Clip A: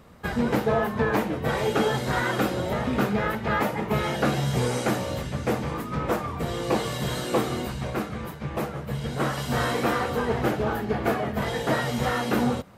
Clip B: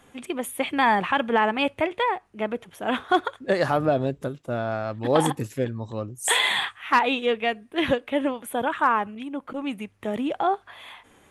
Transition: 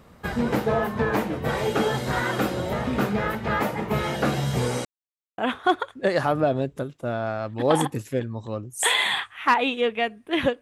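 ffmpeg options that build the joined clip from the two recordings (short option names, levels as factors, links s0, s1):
-filter_complex "[0:a]apad=whole_dur=10.61,atrim=end=10.61,asplit=2[s0][s1];[s0]atrim=end=4.85,asetpts=PTS-STARTPTS,afade=t=out:st=4.846:d=0.004:c=hsin[s2];[s1]atrim=start=4.85:end=5.38,asetpts=PTS-STARTPTS,volume=0[s3];[1:a]atrim=start=2.83:end=8.06,asetpts=PTS-STARTPTS,afade=t=in:d=0.004:c=hsin[s4];[s2][s3][s4]concat=n=3:v=0:a=1"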